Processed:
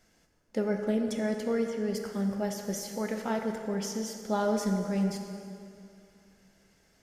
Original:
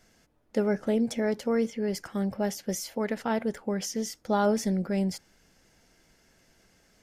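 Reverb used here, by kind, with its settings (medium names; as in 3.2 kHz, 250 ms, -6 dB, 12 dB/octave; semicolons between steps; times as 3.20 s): plate-style reverb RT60 2.6 s, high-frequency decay 0.75×, DRR 3.5 dB; trim -4 dB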